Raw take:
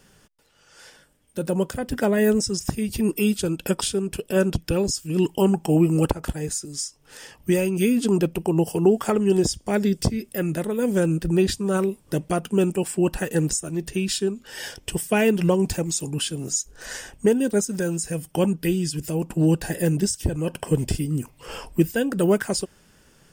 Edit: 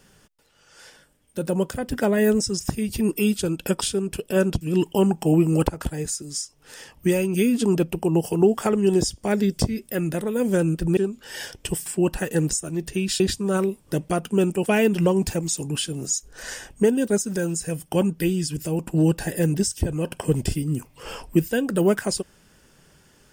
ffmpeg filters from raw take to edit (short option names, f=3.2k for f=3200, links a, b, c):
-filter_complex "[0:a]asplit=6[a][b][c][d][e][f];[a]atrim=end=4.612[g];[b]atrim=start=5.038:end=11.402[h];[c]atrim=start=14.198:end=15.092[i];[d]atrim=start=12.858:end=14.202[j];[e]atrim=start=11.398:end=12.862[k];[f]atrim=start=15.088[l];[g][h]acrossfade=d=0.004:c1=hsin:c2=hsin[m];[m][i]acrossfade=d=0.004:c1=hsin:c2=hsin[n];[n][j]acrossfade=d=0.004:c1=hsin:c2=hsin[o];[o][k]acrossfade=d=0.004:c1=hsin:c2=hsin[p];[p][l]acrossfade=d=0.004:c1=hsin:c2=hsin"